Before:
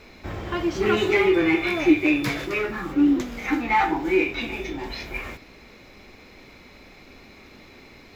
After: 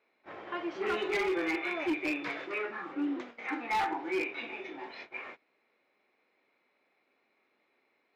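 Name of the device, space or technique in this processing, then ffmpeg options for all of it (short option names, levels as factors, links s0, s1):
walkie-talkie: -af "highpass=440,lowpass=2600,asoftclip=type=hard:threshold=0.106,agate=range=0.158:threshold=0.0112:ratio=16:detection=peak,volume=0.473"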